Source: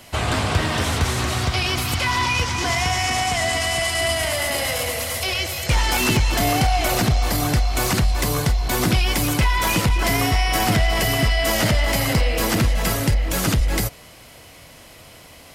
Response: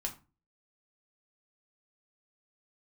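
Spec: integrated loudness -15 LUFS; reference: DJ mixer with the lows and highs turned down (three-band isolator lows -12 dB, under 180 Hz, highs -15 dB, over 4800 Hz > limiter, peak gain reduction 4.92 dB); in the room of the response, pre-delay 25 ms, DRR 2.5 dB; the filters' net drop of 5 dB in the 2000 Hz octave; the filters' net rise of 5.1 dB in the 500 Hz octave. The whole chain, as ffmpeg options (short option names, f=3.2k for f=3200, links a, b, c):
-filter_complex "[0:a]equalizer=f=500:t=o:g=7.5,equalizer=f=2k:t=o:g=-6,asplit=2[a][b];[1:a]atrim=start_sample=2205,adelay=25[c];[b][c]afir=irnorm=-1:irlink=0,volume=-3dB[d];[a][d]amix=inputs=2:normalize=0,acrossover=split=180 4800:gain=0.251 1 0.178[e][f][g];[e][f][g]amix=inputs=3:normalize=0,volume=6dB,alimiter=limit=-4.5dB:level=0:latency=1"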